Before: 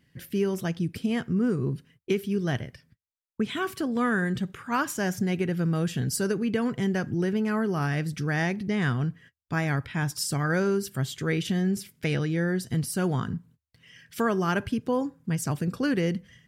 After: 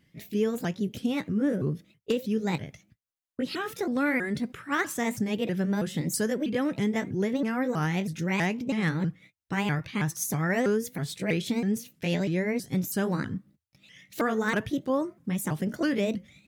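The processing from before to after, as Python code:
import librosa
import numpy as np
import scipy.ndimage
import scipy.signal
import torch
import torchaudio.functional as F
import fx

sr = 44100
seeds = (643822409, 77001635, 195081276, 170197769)

y = fx.pitch_ramps(x, sr, semitones=5.0, every_ms=323)
y = 10.0 ** (-15.5 / 20.0) * (np.abs((y / 10.0 ** (-15.5 / 20.0) + 3.0) % 4.0 - 2.0) - 1.0)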